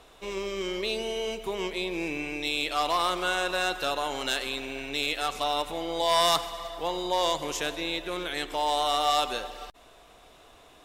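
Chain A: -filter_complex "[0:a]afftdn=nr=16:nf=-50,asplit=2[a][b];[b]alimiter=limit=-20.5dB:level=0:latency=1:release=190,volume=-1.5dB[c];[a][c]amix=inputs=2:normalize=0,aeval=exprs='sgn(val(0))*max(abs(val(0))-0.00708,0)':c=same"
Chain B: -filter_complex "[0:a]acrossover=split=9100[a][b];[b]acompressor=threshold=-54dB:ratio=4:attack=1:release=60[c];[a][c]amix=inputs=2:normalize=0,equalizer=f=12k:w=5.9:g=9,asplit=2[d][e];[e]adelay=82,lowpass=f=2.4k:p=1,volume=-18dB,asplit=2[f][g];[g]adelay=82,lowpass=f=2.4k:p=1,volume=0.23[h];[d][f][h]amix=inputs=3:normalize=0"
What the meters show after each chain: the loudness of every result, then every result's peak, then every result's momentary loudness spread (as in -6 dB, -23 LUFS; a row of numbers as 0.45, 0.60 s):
-25.5, -28.5 LUFS; -10.5, -12.0 dBFS; 7, 8 LU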